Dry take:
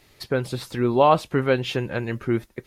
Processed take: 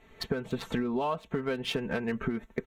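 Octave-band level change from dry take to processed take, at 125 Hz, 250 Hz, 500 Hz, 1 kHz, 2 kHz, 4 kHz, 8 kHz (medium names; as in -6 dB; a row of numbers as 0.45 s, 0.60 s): -11.5 dB, -6.0 dB, -11.0 dB, -13.5 dB, -7.0 dB, -4.5 dB, no reading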